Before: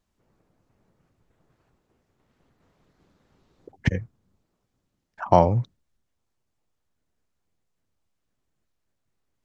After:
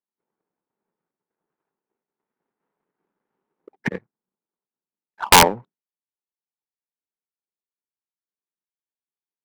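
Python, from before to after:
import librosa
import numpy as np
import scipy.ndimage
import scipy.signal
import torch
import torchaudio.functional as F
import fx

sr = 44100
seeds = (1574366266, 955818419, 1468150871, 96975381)

y = fx.cabinet(x, sr, low_hz=190.0, low_slope=24, high_hz=2400.0, hz=(270.0, 410.0, 620.0, 900.0, 1500.0), db=(-3, 5, -3, 7, 3))
y = (np.mod(10.0 ** (8.0 / 20.0) * y + 1.0, 2.0) - 1.0) / 10.0 ** (8.0 / 20.0)
y = fx.power_curve(y, sr, exponent=1.4)
y = y * librosa.db_to_amplitude(7.0)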